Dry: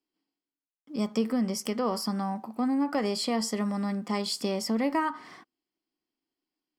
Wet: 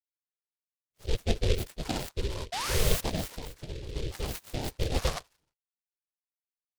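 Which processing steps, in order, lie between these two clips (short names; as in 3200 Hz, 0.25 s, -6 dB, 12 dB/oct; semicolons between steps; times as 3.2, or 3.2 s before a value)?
per-bin expansion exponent 2; three bands offset in time mids, highs, lows 30/100 ms, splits 1200/4000 Hz; whisperiser; ring modulator 230 Hz; 2.52–3.01 painted sound rise 660–6300 Hz -33 dBFS; 3.31–3.96 compressor 6:1, threshold -41 dBFS, peak gain reduction 10.5 dB; low shelf 180 Hz +10 dB; noise-modulated delay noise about 3200 Hz, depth 0.15 ms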